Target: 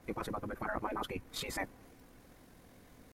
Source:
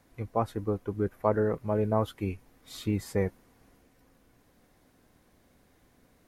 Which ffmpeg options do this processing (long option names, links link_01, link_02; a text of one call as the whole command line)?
ffmpeg -i in.wav -af "atempo=2,afftfilt=real='re*lt(hypot(re,im),0.0891)':imag='im*lt(hypot(re,im),0.0891)':win_size=1024:overlap=0.75,adynamicequalizer=threshold=0.00141:dfrequency=2400:dqfactor=0.7:tfrequency=2400:tqfactor=0.7:attack=5:release=100:ratio=0.375:range=3:mode=cutabove:tftype=highshelf,volume=5.5dB" out.wav